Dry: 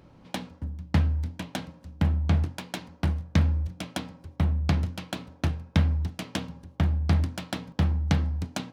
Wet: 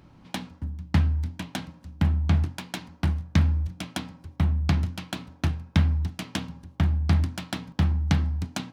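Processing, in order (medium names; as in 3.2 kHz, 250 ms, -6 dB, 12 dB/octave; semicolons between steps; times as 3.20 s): peaking EQ 510 Hz -7.5 dB 0.67 oct; trim +1.5 dB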